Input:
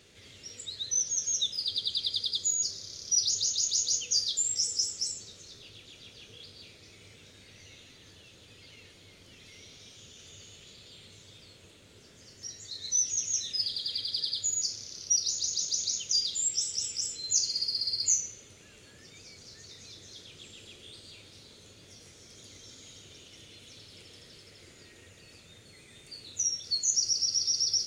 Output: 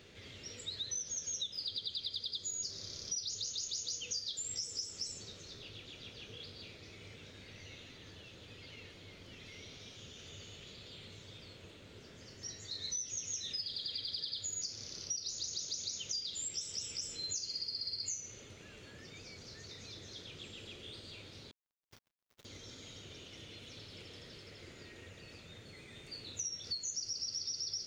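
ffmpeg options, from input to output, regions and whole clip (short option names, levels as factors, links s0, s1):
-filter_complex "[0:a]asettb=1/sr,asplit=3[s0][s1][s2];[s0]atrim=end=21.514[s3];[s1]atrim=start=21.51:end=22.45,asetpts=PTS-STARTPTS,afade=t=in:d=0.004:c=qsin,afade=t=out:st=0.936:d=0.004:c=qsin,agate=range=0.355:threshold=0.00251:ratio=16:release=100:detection=peak,acrusher=bits=7:mix=0:aa=0.5[s4];[s2]atrim=start=22.446[s5];[s3][s4]acrossfade=d=0.004:c1=hsin:c2=qsin[s6];[s6][s5]acrossfade=d=0.004:c1=qsin:c2=hsin,equalizer=f=10000:w=0.7:g=-13.5,acompressor=threshold=0.0112:ratio=6,volume=1.33"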